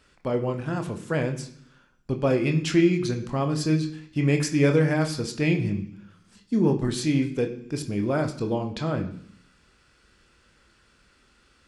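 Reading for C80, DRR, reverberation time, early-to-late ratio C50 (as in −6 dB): 14.0 dB, 4.0 dB, 0.65 s, 11.5 dB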